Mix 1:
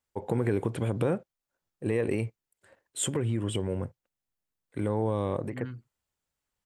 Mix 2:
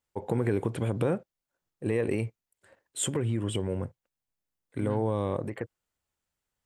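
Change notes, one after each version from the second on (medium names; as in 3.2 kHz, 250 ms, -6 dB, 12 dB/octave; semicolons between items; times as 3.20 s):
second voice: entry -0.75 s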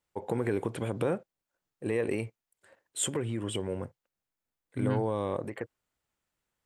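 first voice: add bass shelf 190 Hz -8.5 dB; second voice +8.0 dB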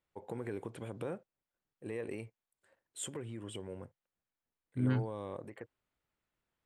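first voice -10.5 dB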